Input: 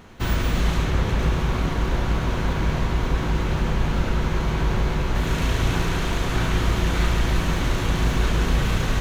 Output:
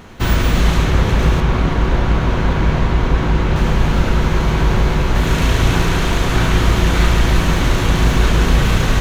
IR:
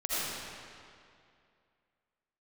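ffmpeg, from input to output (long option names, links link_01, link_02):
-filter_complex "[0:a]asettb=1/sr,asplit=3[link_01][link_02][link_03];[link_01]atrim=end=1.404[link_04];[link_02]atrim=start=1.4:end=3.56,asetpts=PTS-STARTPTS,afade=type=in:duration=0.004:curve=qsin,afade=type=out:start_time=2.156:duration=0.004:curve=qsin,lowpass=frequency=3700:poles=1[link_05];[link_03]atrim=start=3.556[link_06];[link_04][link_05]acrossfade=duration=0.004:curve1=hsin:curve2=qsin[link_07];[link_07][link_06]acrossfade=duration=0.004:curve1=qsin:curve2=hsin,volume=7.5dB"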